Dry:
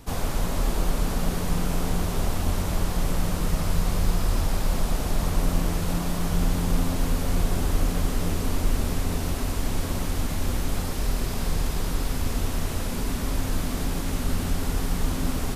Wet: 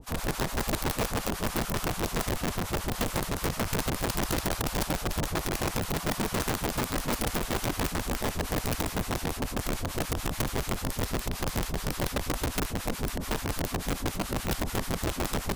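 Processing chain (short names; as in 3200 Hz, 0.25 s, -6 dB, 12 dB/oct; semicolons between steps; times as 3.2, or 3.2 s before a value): harmonic tremolo 6.9 Hz, depth 100%, crossover 820 Hz; wrapped overs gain 23 dB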